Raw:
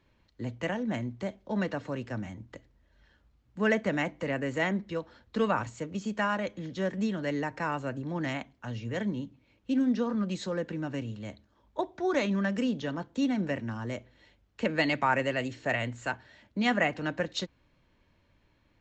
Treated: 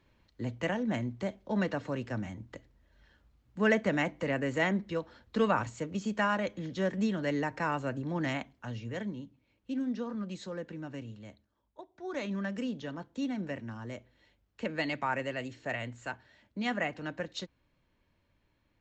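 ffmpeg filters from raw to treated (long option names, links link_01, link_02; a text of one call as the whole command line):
ffmpeg -i in.wav -af "volume=13dB,afade=type=out:start_time=8.39:duration=0.78:silence=0.446684,afade=type=out:start_time=11.11:duration=0.76:silence=0.251189,afade=type=in:start_time=11.87:duration=0.46:silence=0.223872" out.wav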